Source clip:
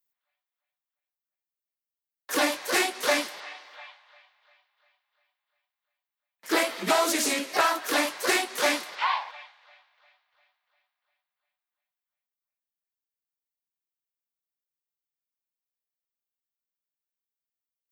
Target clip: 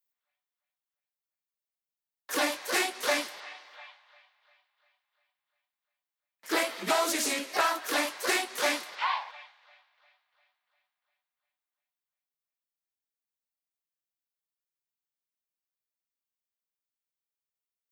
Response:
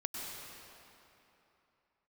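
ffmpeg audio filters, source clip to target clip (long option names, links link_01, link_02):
-af "lowshelf=frequency=340:gain=-3.5,volume=-3dB"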